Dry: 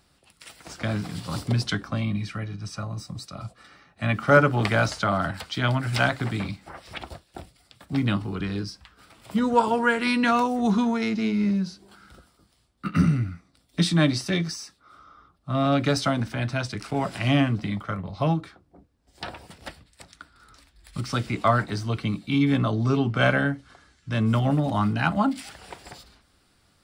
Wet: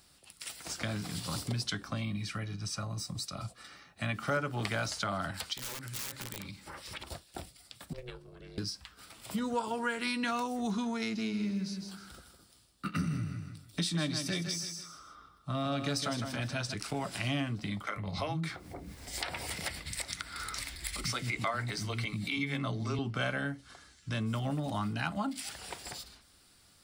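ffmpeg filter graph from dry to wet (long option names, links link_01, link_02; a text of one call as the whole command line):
ffmpeg -i in.wav -filter_complex "[0:a]asettb=1/sr,asplit=3[link_01][link_02][link_03];[link_01]atrim=end=5.534[link_04];[link_02]atrim=start=5.53:end=7.07,asetpts=PTS-STARTPTS,afade=type=in:duration=0.004:curve=qsin,afade=type=out:start_time=1.536:duration=0.004:curve=qsin,aeval=exprs='(mod(10*val(0)+1,2)-1)/10':channel_layout=same,acompressor=threshold=-37dB:ratio=10:attack=3.2:release=140:knee=1:detection=peak,asuperstop=centerf=710:order=4:qfactor=4.7[link_05];[link_03]atrim=start=7.066[link_06];[link_04][link_05]acrossfade=duration=0.004:curve1=hsin:curve2=qsin[link_07];[link_07][link_06]acrossfade=duration=0.004:curve1=qsin:curve2=hsin,asettb=1/sr,asplit=3[link_08][link_09][link_10];[link_08]atrim=end=7.934[link_11];[link_09]atrim=start=7.93:end=8.58,asetpts=PTS-STARTPTS,afade=type=in:duration=0.004:curve=qsin,afade=type=out:start_time=0.646:duration=0.004:curve=qsin,asubboost=boost=11:cutoff=130,agate=range=-17dB:threshold=-20dB:ratio=16:release=100:detection=peak,aeval=exprs='val(0)*sin(2*PI*250*n/s)':channel_layout=same[link_12];[link_10]atrim=start=8.576[link_13];[link_11][link_12]acrossfade=duration=0.004:curve1=hsin:curve2=qsin[link_14];[link_14][link_13]acrossfade=duration=0.004:curve1=qsin:curve2=hsin,asettb=1/sr,asplit=3[link_15][link_16][link_17];[link_15]atrim=end=11.164[link_18];[link_16]atrim=start=11.16:end=16.74,asetpts=PTS-STARTPTS,afade=type=in:duration=0.004:curve=qsin,afade=type=out:start_time=5.576:duration=0.004:curve=qsin,bandreject=frequency=2100:width=22,aecho=1:1:158|316|474:0.355|0.103|0.0298,atrim=end_sample=246078[link_19];[link_17]atrim=start=16.736[link_20];[link_18][link_19]acrossfade=duration=0.004:curve1=hsin:curve2=qsin[link_21];[link_21][link_20]acrossfade=duration=0.004:curve1=qsin:curve2=hsin,asettb=1/sr,asplit=3[link_22][link_23][link_24];[link_22]atrim=end=17.874[link_25];[link_23]atrim=start=17.87:end=22.99,asetpts=PTS-STARTPTS,afade=type=in:duration=0.004:curve=qsin,afade=type=out:start_time=5.116:duration=0.004:curve=qsin,acompressor=mode=upward:threshold=-24dB:ratio=2.5:attack=3.2:release=140:knee=2.83:detection=peak,equalizer=frequency=2100:width=5.9:gain=10.5,acrossover=split=260[link_26][link_27];[link_26]adelay=90[link_28];[link_28][link_27]amix=inputs=2:normalize=0,atrim=end_sample=225792[link_29];[link_24]atrim=start=22.986[link_30];[link_25][link_29]acrossfade=duration=0.004:curve1=hsin:curve2=qsin[link_31];[link_31][link_30]acrossfade=duration=0.004:curve1=qsin:curve2=hsin,highshelf=frequency=3400:gain=11,acompressor=threshold=-31dB:ratio=2.5,volume=-3.5dB" out.wav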